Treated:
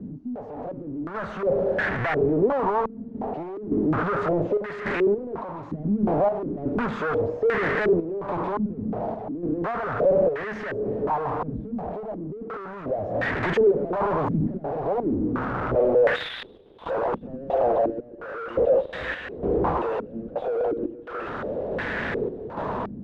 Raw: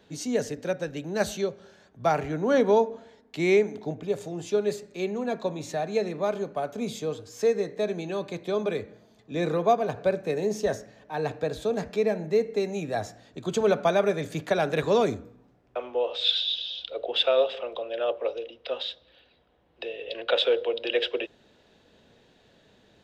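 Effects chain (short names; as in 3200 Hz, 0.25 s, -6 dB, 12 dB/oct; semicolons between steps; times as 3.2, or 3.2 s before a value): infinite clipping; random-step tremolo 3.5 Hz, depth 80%; stepped low-pass 2.8 Hz 230–1800 Hz; gain +3 dB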